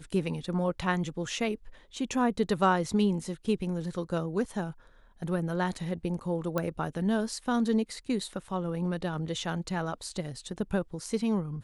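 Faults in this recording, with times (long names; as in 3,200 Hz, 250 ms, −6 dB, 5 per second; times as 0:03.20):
0:06.58: click −16 dBFS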